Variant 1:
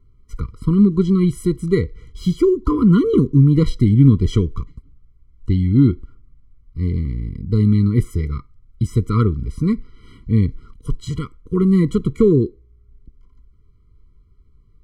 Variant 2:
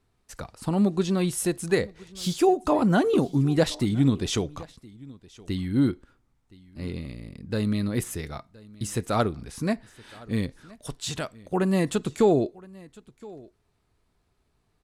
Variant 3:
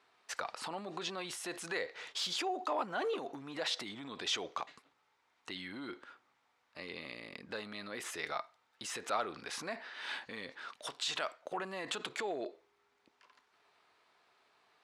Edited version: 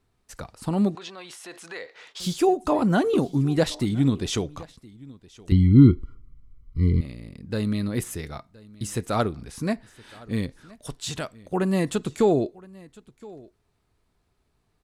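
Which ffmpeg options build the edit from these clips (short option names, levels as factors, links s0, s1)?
-filter_complex "[1:a]asplit=3[s0][s1][s2];[s0]atrim=end=0.952[s3];[2:a]atrim=start=0.948:end=2.202[s4];[s1]atrim=start=2.198:end=5.522[s5];[0:a]atrim=start=5.518:end=7.012[s6];[s2]atrim=start=7.008[s7];[s3][s4]acrossfade=d=0.004:c1=hsin:c2=hsin[s8];[s8][s5]acrossfade=d=0.004:c1=hsin:c2=hsin[s9];[s9][s6]acrossfade=d=0.004:c1=hsin:c2=hsin[s10];[s10][s7]acrossfade=d=0.004:c1=hsin:c2=hsin"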